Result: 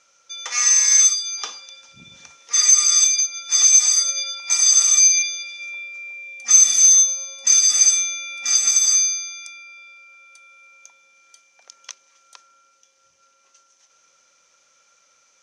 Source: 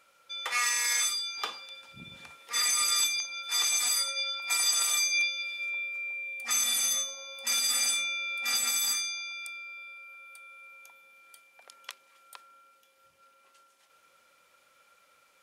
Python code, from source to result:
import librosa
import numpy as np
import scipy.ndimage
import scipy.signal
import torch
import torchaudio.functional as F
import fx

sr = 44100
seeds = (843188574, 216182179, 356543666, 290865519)

y = fx.lowpass_res(x, sr, hz=6100.0, q=11.0)